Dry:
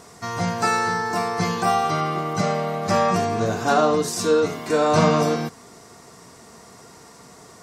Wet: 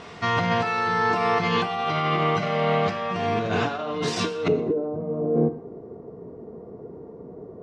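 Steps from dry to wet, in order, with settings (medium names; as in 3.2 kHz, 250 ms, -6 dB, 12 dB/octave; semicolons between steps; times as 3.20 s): compressor with a negative ratio -26 dBFS, ratio -1; resonant low-pass 3 kHz, resonance Q 2.5, from 4.48 s 430 Hz; thinning echo 123 ms, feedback 30%, level -23 dB; gated-style reverb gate 250 ms falling, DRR 10.5 dB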